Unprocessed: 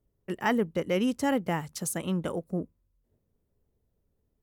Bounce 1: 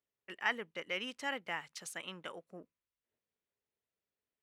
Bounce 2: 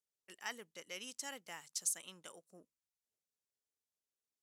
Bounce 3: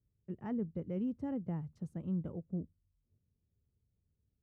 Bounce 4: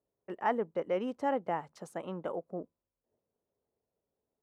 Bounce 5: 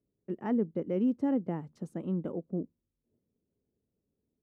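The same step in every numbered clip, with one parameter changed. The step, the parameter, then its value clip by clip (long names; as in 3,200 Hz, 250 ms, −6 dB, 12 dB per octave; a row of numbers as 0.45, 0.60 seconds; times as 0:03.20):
resonant band-pass, frequency: 2,400, 6,700, 100, 740, 270 Hertz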